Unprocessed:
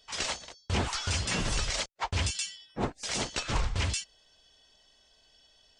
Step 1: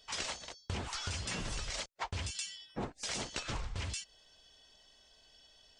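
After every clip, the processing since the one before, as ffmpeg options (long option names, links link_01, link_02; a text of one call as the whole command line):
ffmpeg -i in.wav -af "acompressor=threshold=-35dB:ratio=10" out.wav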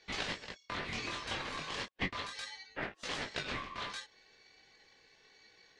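ffmpeg -i in.wav -filter_complex "[0:a]acrossover=split=470 3500:gain=0.224 1 0.0891[link_01][link_02][link_03];[link_01][link_02][link_03]amix=inputs=3:normalize=0,flanger=delay=17.5:depth=7.5:speed=0.35,aeval=exprs='val(0)*sin(2*PI*1100*n/s)':channel_layout=same,volume=11dB" out.wav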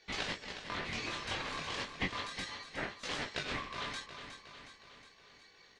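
ffmpeg -i in.wav -af "aecho=1:1:364|728|1092|1456|1820|2184|2548:0.335|0.191|0.109|0.062|0.0354|0.0202|0.0115" out.wav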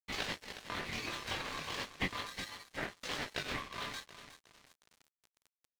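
ffmpeg -i in.wav -af "aeval=exprs='sgn(val(0))*max(abs(val(0))-0.00355,0)':channel_layout=same,areverse,acompressor=mode=upward:threshold=-57dB:ratio=2.5,areverse,volume=1dB" out.wav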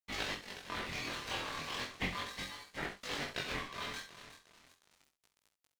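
ffmpeg -i in.wav -filter_complex "[0:a]flanger=delay=19.5:depth=6:speed=0.36,asplit=2[link_01][link_02];[link_02]aecho=0:1:46|67:0.237|0.266[link_03];[link_01][link_03]amix=inputs=2:normalize=0,volume=2.5dB" out.wav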